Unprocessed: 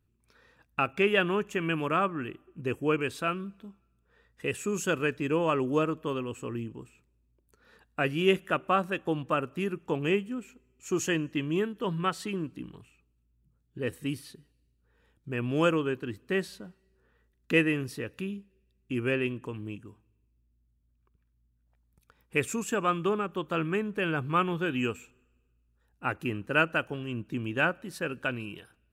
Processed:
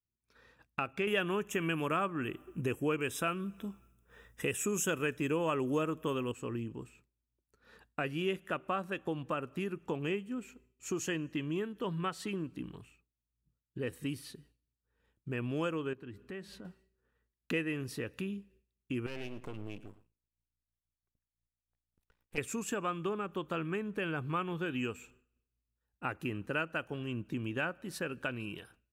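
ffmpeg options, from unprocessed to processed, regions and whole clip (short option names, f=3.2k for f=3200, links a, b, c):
-filter_complex "[0:a]asettb=1/sr,asplit=3[a][b][c];[a]atrim=end=1.074[d];[b]atrim=start=1.07:end=6.32,asetpts=PTS-STARTPTS,afade=t=in:d=0.004:c=qsin,afade=t=out:st=5.246:d=0.004:c=qsin,highshelf=f=7.3k:g=11,acontrast=63,asuperstop=centerf=4400:order=4:qfactor=3.7[e];[c]atrim=start=6.316[f];[d][e]acrossfade=d=0.004:c1=hsin:c2=qsin[g];[g][f]acrossfade=d=0.004:c1=qsin:c2=hsin,asettb=1/sr,asplit=3[h][i][j];[h]atrim=end=15.934[k];[i]atrim=start=15.93:end=16.65,asetpts=PTS-STARTPTS,afade=t=in:d=0.004:c=qsin,afade=t=out:st=0.716:d=0.004:c=qsin,bass=f=250:g=2,treble=f=4k:g=-7,bandreject=f=204:t=h:w=4,bandreject=f=408:t=h:w=4,bandreject=f=612:t=h:w=4,bandreject=f=816:t=h:w=4,bandreject=f=1.02k:t=h:w=4,bandreject=f=1.224k:t=h:w=4,bandreject=f=1.428k:t=h:w=4,bandreject=f=1.632k:t=h:w=4,acompressor=threshold=-45dB:ratio=3:attack=3.2:release=140:knee=1:detection=peak[l];[j]atrim=start=16.646[m];[k][l]acrossfade=d=0.004:c1=hsin:c2=qsin[n];[n][m]acrossfade=d=0.004:c1=qsin:c2=hsin,asettb=1/sr,asplit=3[o][p][q];[o]atrim=end=19.064[r];[p]atrim=start=19.06:end=22.38,asetpts=PTS-STARTPTS,afade=t=in:d=0.004:c=qsin,afade=t=out:st=3.316:d=0.004:c=qsin,acompressor=threshold=-33dB:ratio=4:attack=3.2:release=140:knee=1:detection=peak,aeval=exprs='max(val(0),0)':c=same,aecho=1:1:109:0.133,atrim=end_sample=146412[s];[q]atrim=start=22.376[t];[r][s]acrossfade=d=0.004:c1=hsin:c2=qsin[u];[u][t]acrossfade=d=0.004:c1=qsin:c2=hsin,acompressor=threshold=-35dB:ratio=2.5,agate=range=-33dB:threshold=-59dB:ratio=3:detection=peak"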